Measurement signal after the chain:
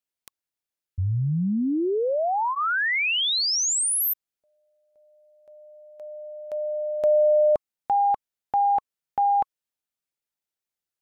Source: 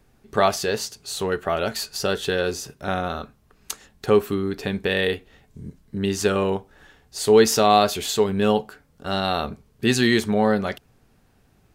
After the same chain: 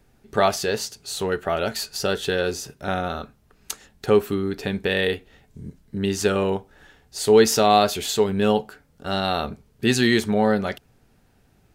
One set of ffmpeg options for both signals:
ffmpeg -i in.wav -af "bandreject=frequency=1100:width=13" out.wav

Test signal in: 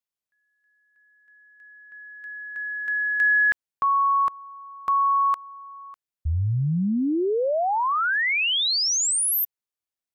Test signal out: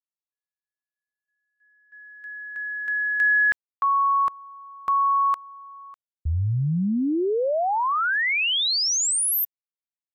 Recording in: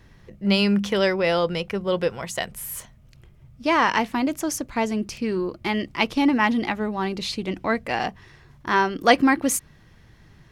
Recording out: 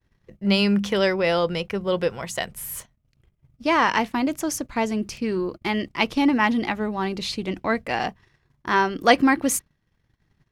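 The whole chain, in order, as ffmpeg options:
ffmpeg -i in.wav -af "agate=range=-33dB:threshold=-42dB:ratio=3:release=49:detection=peak" out.wav

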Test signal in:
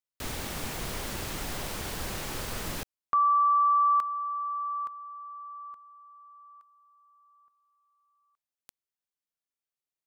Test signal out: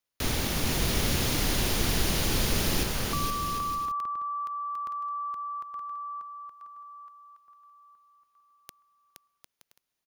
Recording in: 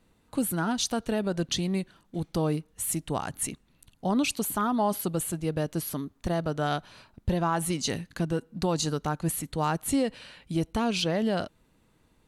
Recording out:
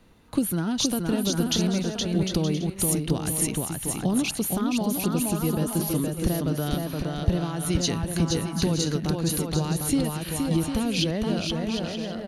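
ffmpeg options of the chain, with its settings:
ffmpeg -i in.wav -filter_complex "[0:a]bandreject=frequency=7900:width=5.2,acompressor=threshold=-29dB:ratio=6:attack=34:release=942:knee=1:detection=peak,highshelf=frequency=11000:gain=-3.5,aecho=1:1:470|752|921.2|1023|1084:0.631|0.398|0.251|0.158|0.1,acrossover=split=440|2400[link_01][link_02][link_03];[link_02]acompressor=threshold=-42dB:ratio=6:attack=0.21:release=155:knee=2.83:detection=peak[link_04];[link_01][link_04][link_03]amix=inputs=3:normalize=0,volume=8.5dB" out.wav

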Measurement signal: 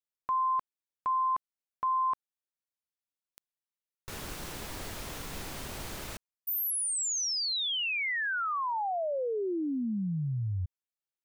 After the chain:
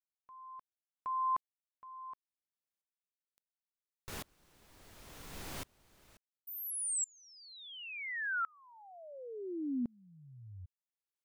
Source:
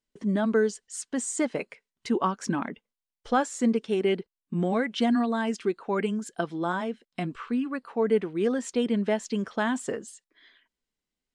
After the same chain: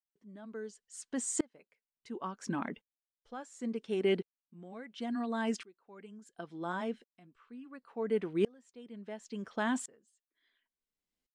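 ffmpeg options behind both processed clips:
ffmpeg -i in.wav -af "aeval=exprs='val(0)*pow(10,-32*if(lt(mod(-0.71*n/s,1),2*abs(-0.71)/1000),1-mod(-0.71*n/s,1)/(2*abs(-0.71)/1000),(mod(-0.71*n/s,1)-2*abs(-0.71)/1000)/(1-2*abs(-0.71)/1000))/20)':channel_layout=same,volume=-1dB" out.wav

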